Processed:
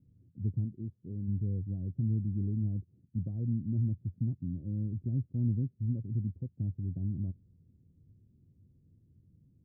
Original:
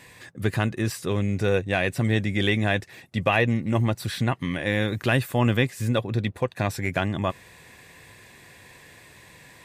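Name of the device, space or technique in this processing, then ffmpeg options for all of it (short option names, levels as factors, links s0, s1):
the neighbour's flat through the wall: -filter_complex "[0:a]lowpass=f=250:w=0.5412,lowpass=f=250:w=1.3066,equalizer=f=88:t=o:w=0.46:g=6,asplit=3[s0][s1][s2];[s0]afade=t=out:st=0.64:d=0.02[s3];[s1]lowshelf=f=150:g=-10.5,afade=t=in:st=0.64:d=0.02,afade=t=out:st=1.27:d=0.02[s4];[s2]afade=t=in:st=1.27:d=0.02[s5];[s3][s4][s5]amix=inputs=3:normalize=0,volume=0.422"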